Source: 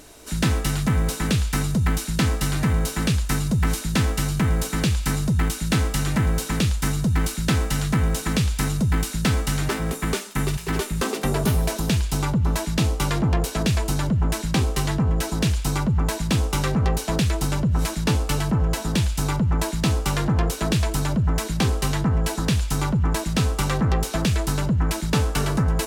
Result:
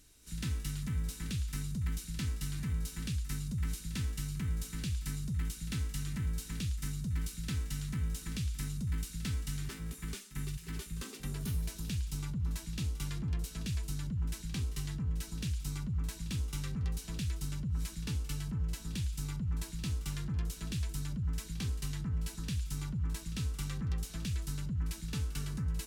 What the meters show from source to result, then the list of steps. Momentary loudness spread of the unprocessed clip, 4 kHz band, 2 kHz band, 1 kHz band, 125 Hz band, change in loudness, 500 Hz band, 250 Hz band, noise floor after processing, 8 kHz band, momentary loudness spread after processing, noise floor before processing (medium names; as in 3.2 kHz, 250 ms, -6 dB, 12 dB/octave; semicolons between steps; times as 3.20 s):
1 LU, -15.5 dB, -19.0 dB, -25.5 dB, -13.5 dB, -14.5 dB, -26.0 dB, -17.0 dB, -48 dBFS, -14.5 dB, 1 LU, -33 dBFS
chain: amplifier tone stack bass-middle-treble 6-0-2; pre-echo 48 ms -15 dB